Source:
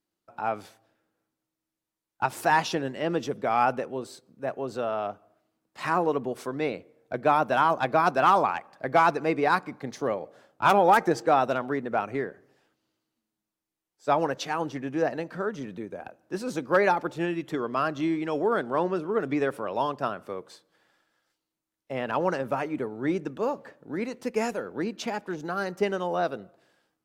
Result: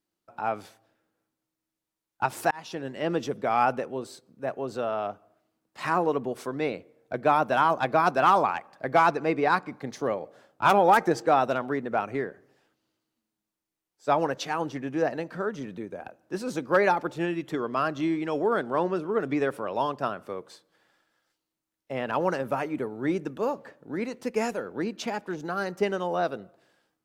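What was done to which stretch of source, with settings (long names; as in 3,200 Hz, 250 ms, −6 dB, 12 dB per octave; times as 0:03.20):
0:02.51–0:03.05: fade in
0:09.09–0:09.71: high-shelf EQ 9,500 Hz −9.5 dB
0:22.13–0:23.55: parametric band 12,000 Hz +5.5 dB 0.63 octaves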